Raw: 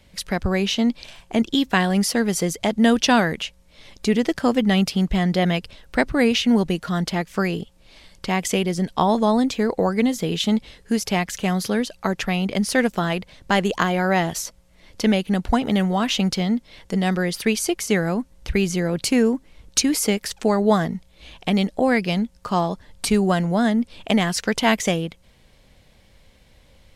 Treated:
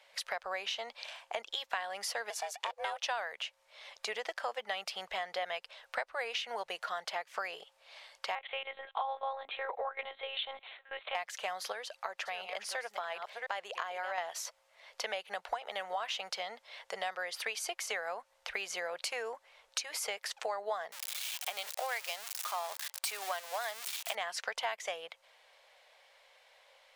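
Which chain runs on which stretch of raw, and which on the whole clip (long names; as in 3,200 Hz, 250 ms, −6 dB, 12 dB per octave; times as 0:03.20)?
0:02.30–0:03.05: high-pass filter 360 Hz + ring modulation 280 Hz
0:08.35–0:11.15: notch filter 530 Hz, Q 10 + one-pitch LPC vocoder at 8 kHz 270 Hz
0:11.72–0:14.18: delay that plays each chunk backwards 349 ms, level −10.5 dB + downward compressor 1.5 to 1, threshold −36 dBFS
0:20.92–0:24.15: spike at every zero crossing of −13.5 dBFS + high-pass filter 740 Hz 6 dB per octave
whole clip: inverse Chebyshev high-pass filter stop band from 300 Hz, stop band 40 dB; high-shelf EQ 4,700 Hz −11 dB; downward compressor 4 to 1, threshold −35 dBFS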